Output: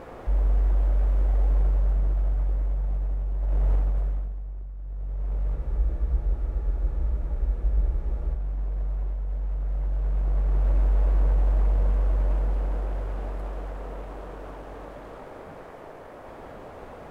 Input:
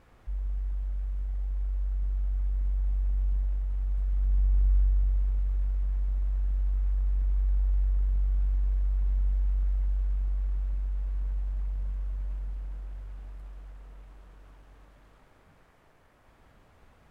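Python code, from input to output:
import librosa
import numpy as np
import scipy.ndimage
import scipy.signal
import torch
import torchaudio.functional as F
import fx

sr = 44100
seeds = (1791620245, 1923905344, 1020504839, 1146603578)

y = fx.over_compress(x, sr, threshold_db=-29.0, ratio=-0.5)
y = fx.peak_eq(y, sr, hz=520.0, db=15.0, octaves=2.5)
y = fx.spec_freeze(y, sr, seeds[0], at_s=5.58, hold_s=2.76)
y = y * librosa.db_to_amplitude(6.0)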